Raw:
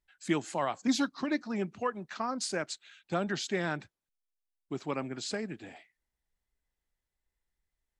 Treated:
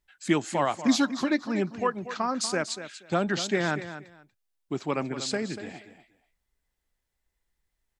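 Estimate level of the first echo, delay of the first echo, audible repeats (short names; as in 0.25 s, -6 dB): -12.0 dB, 0.239 s, 2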